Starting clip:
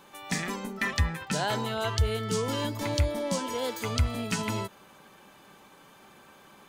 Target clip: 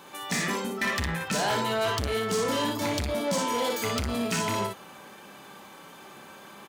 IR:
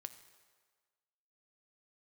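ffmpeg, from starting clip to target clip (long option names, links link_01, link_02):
-filter_complex "[0:a]asplit=2[link_01][link_02];[link_02]aecho=0:1:30|59:0.422|0.562[link_03];[link_01][link_03]amix=inputs=2:normalize=0,asoftclip=type=tanh:threshold=-27.5dB,highpass=frequency=130:poles=1,volume=5.5dB"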